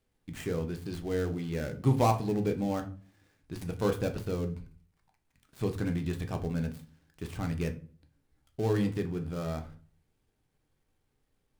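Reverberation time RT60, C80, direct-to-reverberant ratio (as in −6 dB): 0.40 s, 19.0 dB, 5.0 dB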